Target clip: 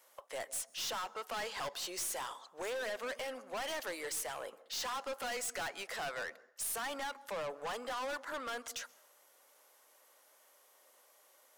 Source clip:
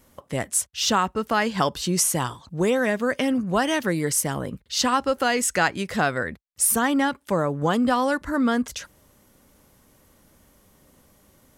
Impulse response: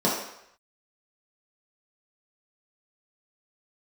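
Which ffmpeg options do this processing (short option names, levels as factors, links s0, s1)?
-filter_complex "[0:a]highpass=f=530:w=0.5412,highpass=f=530:w=1.3066,aeval=exprs='(tanh(39.8*val(0)+0.1)-tanh(0.1))/39.8':c=same,asplit=2[s0][s1];[1:a]atrim=start_sample=2205,asetrate=52920,aresample=44100,adelay=129[s2];[s1][s2]afir=irnorm=-1:irlink=0,volume=0.0188[s3];[s0][s3]amix=inputs=2:normalize=0,volume=0.596"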